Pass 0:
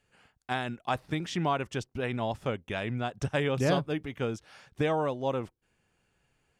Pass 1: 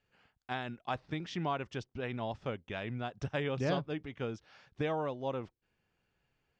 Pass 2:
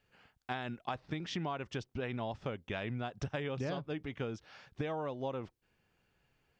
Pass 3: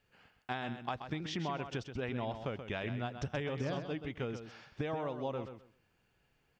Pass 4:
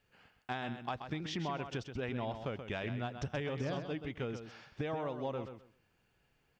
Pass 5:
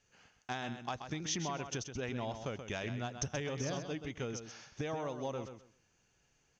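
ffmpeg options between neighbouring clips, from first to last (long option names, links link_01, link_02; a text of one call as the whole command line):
ffmpeg -i in.wav -af "lowpass=frequency=5800:width=0.5412,lowpass=frequency=5800:width=1.3066,volume=-6dB" out.wav
ffmpeg -i in.wav -af "acompressor=threshold=-38dB:ratio=6,volume=4dB" out.wav
ffmpeg -i in.wav -af "aecho=1:1:130|260|390:0.355|0.071|0.0142" out.wav
ffmpeg -i in.wav -af "asoftclip=type=tanh:threshold=-23.5dB" out.wav
ffmpeg -i in.wav -af "lowpass=frequency=6300:width_type=q:width=12,volume=-1dB" out.wav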